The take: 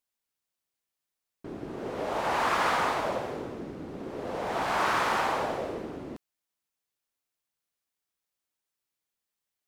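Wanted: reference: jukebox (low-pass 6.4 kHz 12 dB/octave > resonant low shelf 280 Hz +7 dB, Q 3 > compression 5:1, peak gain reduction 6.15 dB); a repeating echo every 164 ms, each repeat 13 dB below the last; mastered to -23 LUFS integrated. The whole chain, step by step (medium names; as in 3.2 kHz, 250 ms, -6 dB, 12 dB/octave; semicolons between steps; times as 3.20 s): low-pass 6.4 kHz 12 dB/octave; resonant low shelf 280 Hz +7 dB, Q 3; feedback delay 164 ms, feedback 22%, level -13 dB; compression 5:1, threshold -28 dBFS; trim +10 dB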